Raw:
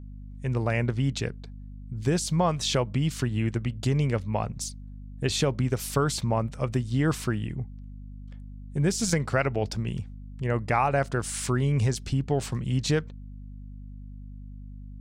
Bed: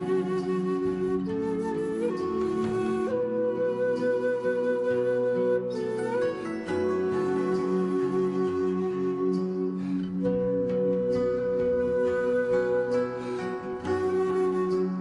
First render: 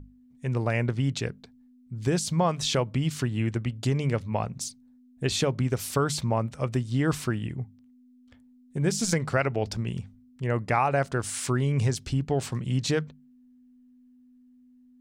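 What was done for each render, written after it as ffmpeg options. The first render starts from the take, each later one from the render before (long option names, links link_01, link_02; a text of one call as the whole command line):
ffmpeg -i in.wav -af "bandreject=frequency=50:width_type=h:width=6,bandreject=frequency=100:width_type=h:width=6,bandreject=frequency=150:width_type=h:width=6,bandreject=frequency=200:width_type=h:width=6" out.wav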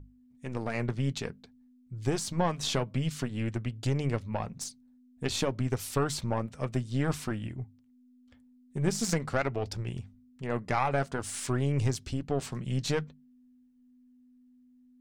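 ffmpeg -i in.wav -af "aeval=exprs='0.299*(cos(1*acos(clip(val(0)/0.299,-1,1)))-cos(1*PI/2))+0.0376*(cos(4*acos(clip(val(0)/0.299,-1,1)))-cos(4*PI/2))':channel_layout=same,flanger=delay=2.1:depth=3.2:regen=-62:speed=0.51:shape=triangular" out.wav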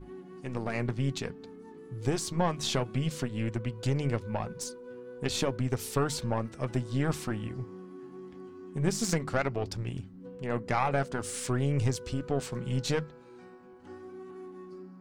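ffmpeg -i in.wav -i bed.wav -filter_complex "[1:a]volume=-19.5dB[link_01];[0:a][link_01]amix=inputs=2:normalize=0" out.wav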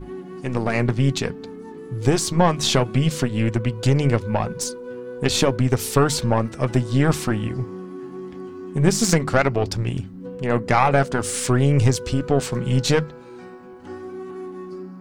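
ffmpeg -i in.wav -af "volume=11dB" out.wav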